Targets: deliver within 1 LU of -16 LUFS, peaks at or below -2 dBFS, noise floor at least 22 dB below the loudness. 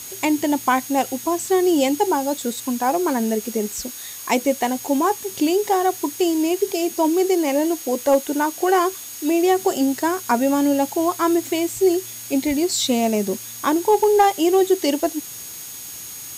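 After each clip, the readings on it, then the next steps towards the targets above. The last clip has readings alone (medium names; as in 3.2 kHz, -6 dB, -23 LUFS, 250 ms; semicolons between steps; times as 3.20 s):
steady tone 6.6 kHz; tone level -38 dBFS; noise floor -35 dBFS; noise floor target -42 dBFS; loudness -20.0 LUFS; peak level -6.5 dBFS; loudness target -16.0 LUFS
-> band-stop 6.6 kHz, Q 30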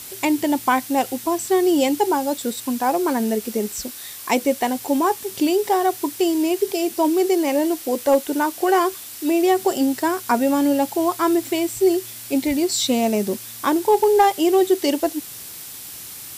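steady tone not found; noise floor -36 dBFS; noise floor target -43 dBFS
-> noise reduction 7 dB, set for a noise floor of -36 dBFS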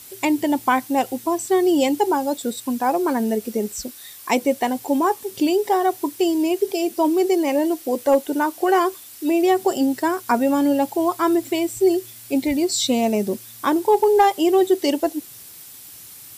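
noise floor -42 dBFS; noise floor target -43 dBFS
-> noise reduction 6 dB, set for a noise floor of -42 dBFS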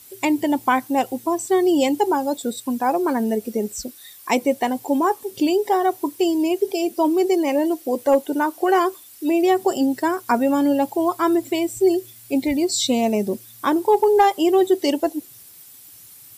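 noise floor -45 dBFS; loudness -20.5 LUFS; peak level -7.0 dBFS; loudness target -16.0 LUFS
-> trim +4.5 dB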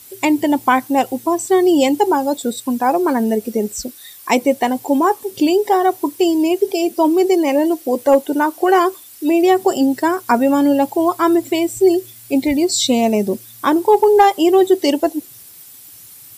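loudness -16.0 LUFS; peak level -2.5 dBFS; noise floor -41 dBFS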